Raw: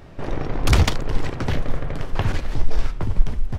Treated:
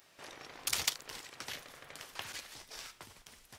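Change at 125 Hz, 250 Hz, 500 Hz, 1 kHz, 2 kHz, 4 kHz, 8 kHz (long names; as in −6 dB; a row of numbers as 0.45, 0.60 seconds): −37.5, −29.5, −23.5, −17.5, −12.0, −6.5, −1.5 decibels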